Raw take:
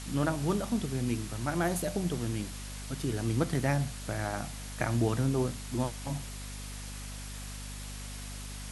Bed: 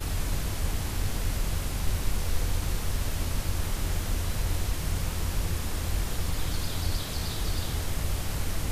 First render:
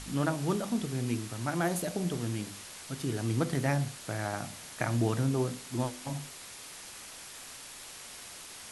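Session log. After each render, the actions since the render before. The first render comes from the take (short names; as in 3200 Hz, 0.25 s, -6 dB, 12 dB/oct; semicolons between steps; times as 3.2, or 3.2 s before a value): de-hum 50 Hz, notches 12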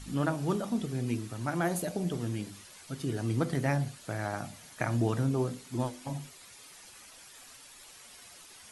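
denoiser 9 dB, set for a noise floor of -47 dBFS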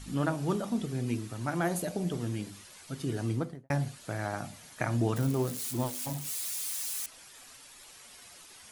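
3.24–3.7 studio fade out; 5.16–7.06 switching spikes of -30.5 dBFS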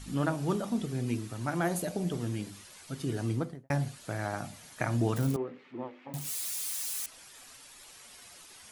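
5.36–6.14 speaker cabinet 350–2100 Hz, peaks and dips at 670 Hz -8 dB, 980 Hz -6 dB, 1500 Hz -7 dB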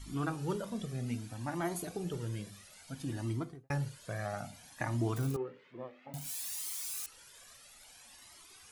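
cascading flanger rising 0.6 Hz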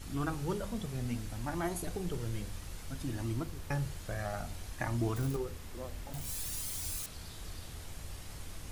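add bed -15.5 dB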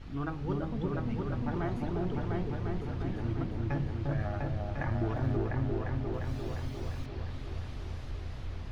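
air absorption 260 m; repeats that get brighter 0.35 s, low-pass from 750 Hz, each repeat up 2 oct, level 0 dB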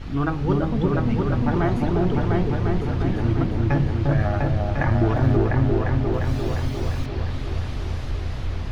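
gain +12 dB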